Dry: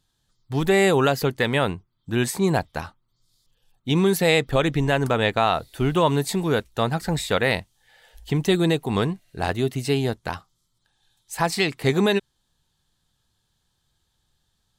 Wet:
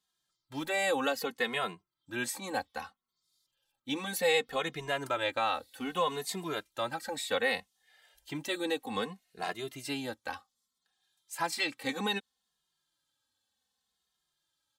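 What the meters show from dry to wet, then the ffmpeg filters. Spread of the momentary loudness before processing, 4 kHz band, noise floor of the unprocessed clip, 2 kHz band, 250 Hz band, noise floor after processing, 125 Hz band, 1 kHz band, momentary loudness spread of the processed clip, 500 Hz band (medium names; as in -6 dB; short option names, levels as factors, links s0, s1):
10 LU, -7.5 dB, -73 dBFS, -7.5 dB, -15.5 dB, -85 dBFS, -24.0 dB, -8.5 dB, 11 LU, -12.0 dB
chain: -filter_complex "[0:a]highpass=f=570:p=1,aecho=1:1:3.8:0.41,asplit=2[s0][s1];[s1]adelay=2.4,afreqshift=-0.64[s2];[s0][s2]amix=inputs=2:normalize=1,volume=0.562"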